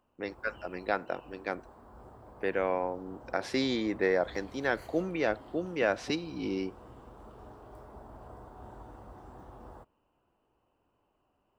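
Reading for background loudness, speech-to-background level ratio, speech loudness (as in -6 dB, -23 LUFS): -51.5 LUFS, 18.5 dB, -33.0 LUFS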